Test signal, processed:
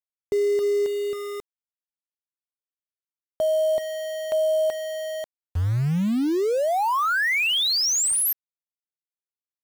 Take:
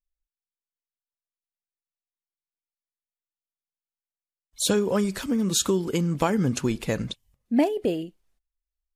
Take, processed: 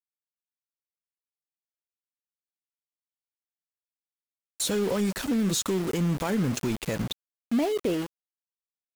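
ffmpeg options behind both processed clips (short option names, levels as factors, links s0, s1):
-af "alimiter=limit=0.126:level=0:latency=1:release=49,aeval=exprs='val(0)*gte(abs(val(0)),0.02)':c=same,aeval=exprs='0.126*(cos(1*acos(clip(val(0)/0.126,-1,1)))-cos(1*PI/2))+0.00891*(cos(5*acos(clip(val(0)/0.126,-1,1)))-cos(5*PI/2))':c=same"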